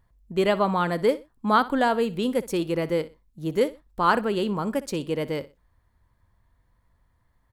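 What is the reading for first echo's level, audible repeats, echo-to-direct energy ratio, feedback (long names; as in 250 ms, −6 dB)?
−17.5 dB, 2, −17.0 dB, 26%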